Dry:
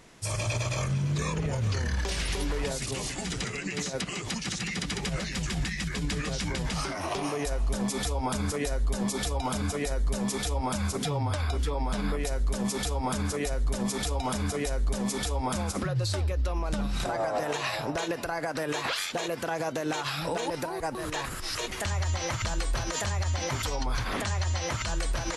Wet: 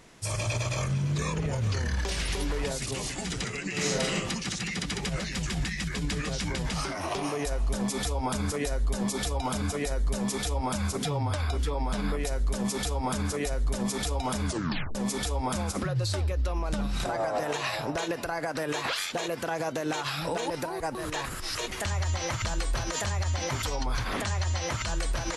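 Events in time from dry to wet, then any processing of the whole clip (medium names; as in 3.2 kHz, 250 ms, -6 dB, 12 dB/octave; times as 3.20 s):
3.70–4.14 s: reverb throw, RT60 0.88 s, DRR -4.5 dB
14.46 s: tape stop 0.49 s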